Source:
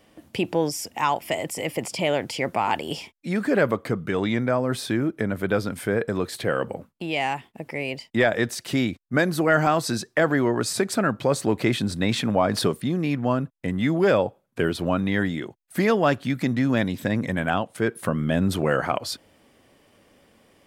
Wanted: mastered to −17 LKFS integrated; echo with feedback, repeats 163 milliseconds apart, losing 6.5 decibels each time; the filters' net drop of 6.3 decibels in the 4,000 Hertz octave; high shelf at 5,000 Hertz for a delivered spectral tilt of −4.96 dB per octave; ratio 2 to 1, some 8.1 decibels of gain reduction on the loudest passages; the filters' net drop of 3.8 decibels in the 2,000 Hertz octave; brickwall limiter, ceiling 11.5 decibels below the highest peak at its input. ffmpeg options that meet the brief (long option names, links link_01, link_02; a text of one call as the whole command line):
ffmpeg -i in.wav -af "equalizer=frequency=2000:width_type=o:gain=-3.5,equalizer=frequency=4000:width_type=o:gain=-9,highshelf=frequency=5000:gain=3.5,acompressor=threshold=-31dB:ratio=2,alimiter=level_in=2.5dB:limit=-24dB:level=0:latency=1,volume=-2.5dB,aecho=1:1:163|326|489|652|815|978:0.473|0.222|0.105|0.0491|0.0231|0.0109,volume=18.5dB" out.wav